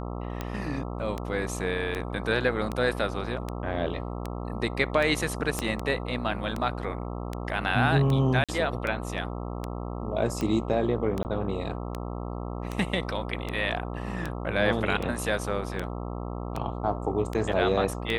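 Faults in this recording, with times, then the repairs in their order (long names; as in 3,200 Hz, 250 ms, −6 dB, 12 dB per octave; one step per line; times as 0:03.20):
mains buzz 60 Hz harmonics 22 −34 dBFS
scratch tick 78 rpm −17 dBFS
0:05.59: click −13 dBFS
0:08.44–0:08.49: drop-out 46 ms
0:11.23–0:11.25: drop-out 19 ms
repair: click removal
hum removal 60 Hz, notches 22
repair the gap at 0:08.44, 46 ms
repair the gap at 0:11.23, 19 ms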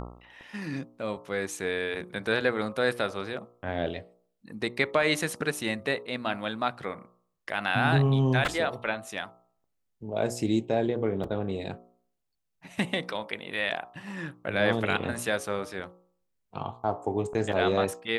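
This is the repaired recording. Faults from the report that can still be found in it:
0:05.59: click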